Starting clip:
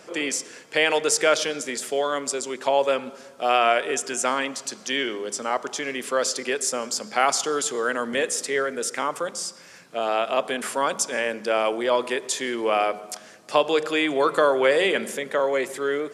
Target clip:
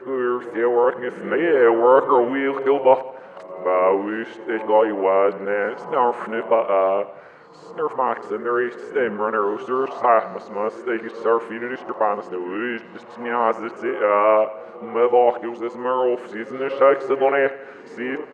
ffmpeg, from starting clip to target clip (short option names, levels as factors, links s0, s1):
-filter_complex "[0:a]areverse,bandreject=f=710:w=12,acrossover=split=2500[s0][s1];[s1]acompressor=threshold=0.0251:ratio=4:attack=1:release=60[s2];[s0][s2]amix=inputs=2:normalize=0,firequalizer=gain_entry='entry(240,0);entry(690,8);entry(6000,-24)':delay=0.05:min_phase=1,asetrate=38808,aresample=44100,aecho=1:1:85|170|255|340|425:0.133|0.0747|0.0418|0.0234|0.0131"